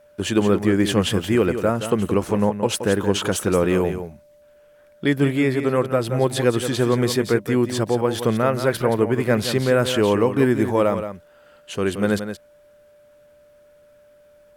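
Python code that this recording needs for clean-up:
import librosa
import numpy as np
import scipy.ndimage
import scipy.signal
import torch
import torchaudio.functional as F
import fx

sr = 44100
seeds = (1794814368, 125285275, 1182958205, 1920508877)

y = fx.notch(x, sr, hz=590.0, q=30.0)
y = fx.fix_echo_inverse(y, sr, delay_ms=174, level_db=-9.5)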